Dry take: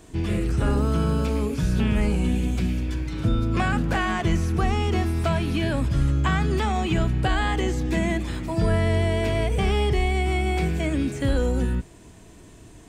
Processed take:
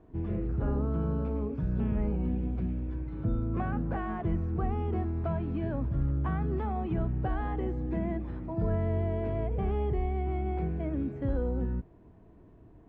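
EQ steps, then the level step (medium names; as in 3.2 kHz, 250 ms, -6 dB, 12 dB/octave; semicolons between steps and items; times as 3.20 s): low-pass 1 kHz 12 dB/octave; -7.5 dB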